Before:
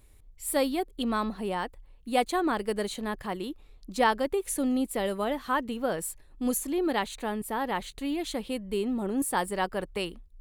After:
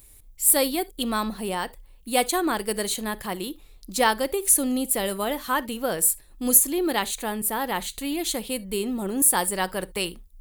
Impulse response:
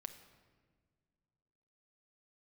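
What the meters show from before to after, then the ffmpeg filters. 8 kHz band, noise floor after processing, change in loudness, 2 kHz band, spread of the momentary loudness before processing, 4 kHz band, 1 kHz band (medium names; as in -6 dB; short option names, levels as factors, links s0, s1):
+15.0 dB, -51 dBFS, +6.5 dB, +4.5 dB, 8 LU, +7.5 dB, +2.5 dB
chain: -filter_complex "[0:a]aemphasis=mode=production:type=75kf,asplit=2[s0][s1];[1:a]atrim=start_sample=2205,atrim=end_sample=3528[s2];[s1][s2]afir=irnorm=-1:irlink=0,volume=1.5[s3];[s0][s3]amix=inputs=2:normalize=0,volume=0.668"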